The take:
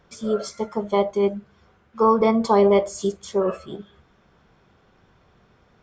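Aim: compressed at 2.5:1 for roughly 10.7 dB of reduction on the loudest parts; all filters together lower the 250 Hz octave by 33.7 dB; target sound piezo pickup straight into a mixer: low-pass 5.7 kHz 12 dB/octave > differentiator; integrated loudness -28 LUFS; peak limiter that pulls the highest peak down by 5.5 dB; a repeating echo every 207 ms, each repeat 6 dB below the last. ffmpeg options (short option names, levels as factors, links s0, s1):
-af "equalizer=f=250:t=o:g=-6.5,acompressor=threshold=0.0282:ratio=2.5,alimiter=limit=0.0668:level=0:latency=1,lowpass=5700,aderivative,aecho=1:1:207|414|621|828|1035|1242:0.501|0.251|0.125|0.0626|0.0313|0.0157,volume=11.9"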